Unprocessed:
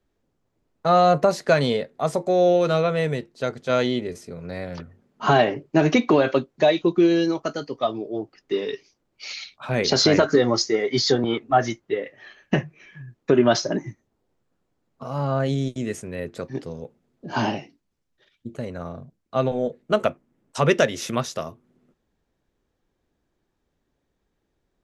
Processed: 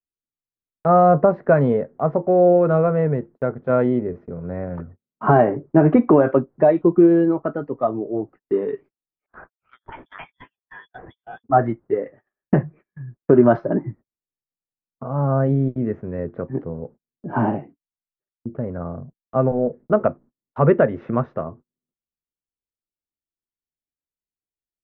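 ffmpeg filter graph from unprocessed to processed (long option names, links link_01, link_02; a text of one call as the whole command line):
ffmpeg -i in.wav -filter_complex "[0:a]asettb=1/sr,asplit=3[link_01][link_02][link_03];[link_01]atrim=end=9.264[link_04];[link_02]atrim=start=9.26:end=11.44,asetpts=PTS-STARTPTS,afade=type=in:duration=0.004:curve=qsin,afade=type=out:start_time=2.176:duration=0.004:curve=qsin,highpass=frequency=590:poles=1,acrossover=split=660[link_05][link_06];[link_05]aeval=exprs='val(0)*(1-1/2+1/2*cos(2*PI*3.7*n/s))':channel_layout=same[link_07];[link_06]aeval=exprs='val(0)*(1-1/2-1/2*cos(2*PI*3.7*n/s))':channel_layout=same[link_08];[link_07][link_08]amix=inputs=2:normalize=0,lowpass=frequency=3200:width_type=q:width=0.5098,lowpass=frequency=3200:width_type=q:width=0.6013,lowpass=frequency=3200:width_type=q:width=0.9,lowpass=frequency=3200:width_type=q:width=2.563,afreqshift=-3800[link_09];[link_03]atrim=start=11.436[link_10];[link_04][link_09]acrossfade=duration=0.004:curve1=hsin:curve2=qsin[link_11];[link_11][link_10]acrossfade=duration=0.004:curve1=qsin:curve2=hsin,lowpass=frequency=1500:width=0.5412,lowpass=frequency=1500:width=1.3066,agate=range=-35dB:threshold=-45dB:ratio=16:detection=peak,lowshelf=frequency=500:gain=5,volume=1dB" out.wav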